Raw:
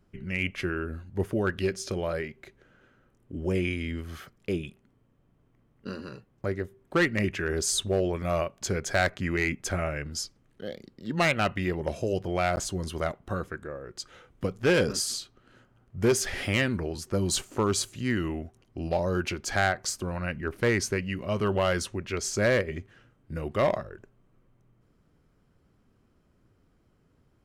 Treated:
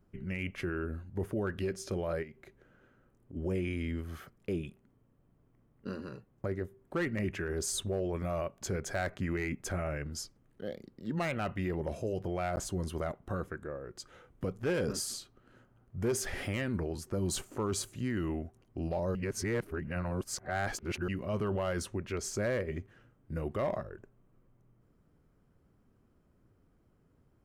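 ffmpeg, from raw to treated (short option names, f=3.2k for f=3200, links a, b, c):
-filter_complex "[0:a]asplit=3[a][b][c];[a]afade=t=out:st=2.22:d=0.02[d];[b]acompressor=threshold=-44dB:ratio=2.5:attack=3.2:release=140:knee=1:detection=peak,afade=t=in:st=2.22:d=0.02,afade=t=out:st=3.35:d=0.02[e];[c]afade=t=in:st=3.35:d=0.02[f];[d][e][f]amix=inputs=3:normalize=0,asplit=3[g][h][i];[g]atrim=end=19.152[j];[h]atrim=start=19.148:end=21.082,asetpts=PTS-STARTPTS,areverse[k];[i]atrim=start=21.078[l];[j][k]acrossfade=d=0.004:c1=hsin:c2=hsin[m];[m][l]acrossfade=d=0.004:c1=hsin:c2=hsin,equalizer=f=4.1k:t=o:w=2.3:g=-7,alimiter=limit=-23.5dB:level=0:latency=1:release=17,volume=-2dB"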